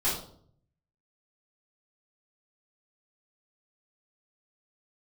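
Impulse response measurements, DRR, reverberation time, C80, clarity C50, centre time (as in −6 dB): −11.5 dB, 0.60 s, 9.0 dB, 4.0 dB, 40 ms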